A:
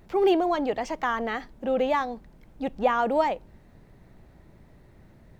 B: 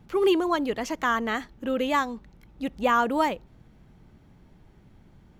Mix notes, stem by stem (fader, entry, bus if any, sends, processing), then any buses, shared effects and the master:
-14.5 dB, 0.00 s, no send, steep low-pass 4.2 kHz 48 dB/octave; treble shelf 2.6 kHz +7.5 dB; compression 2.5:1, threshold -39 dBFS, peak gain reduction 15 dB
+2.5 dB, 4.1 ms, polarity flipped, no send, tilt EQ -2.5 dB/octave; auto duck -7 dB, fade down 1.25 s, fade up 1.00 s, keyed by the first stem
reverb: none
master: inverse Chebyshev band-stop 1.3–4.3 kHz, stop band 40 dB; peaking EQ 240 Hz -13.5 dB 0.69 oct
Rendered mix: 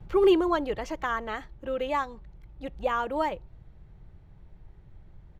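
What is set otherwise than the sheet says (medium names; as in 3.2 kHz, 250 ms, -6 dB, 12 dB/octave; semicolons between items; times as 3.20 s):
stem A: missing compression 2.5:1, threshold -39 dBFS, peak gain reduction 15 dB; master: missing inverse Chebyshev band-stop 1.3–4.3 kHz, stop band 40 dB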